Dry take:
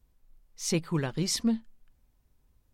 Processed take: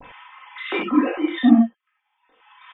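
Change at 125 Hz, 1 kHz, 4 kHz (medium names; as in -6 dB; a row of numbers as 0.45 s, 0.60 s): no reading, +15.5 dB, +0.5 dB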